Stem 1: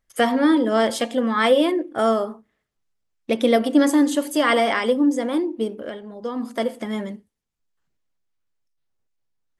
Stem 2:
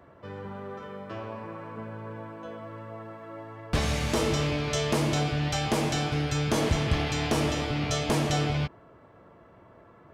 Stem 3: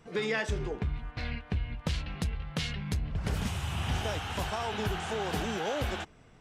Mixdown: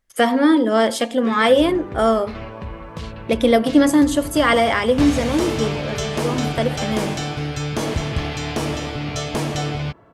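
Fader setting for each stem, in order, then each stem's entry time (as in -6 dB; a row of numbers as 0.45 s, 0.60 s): +2.5 dB, +2.5 dB, -1.5 dB; 0.00 s, 1.25 s, 1.10 s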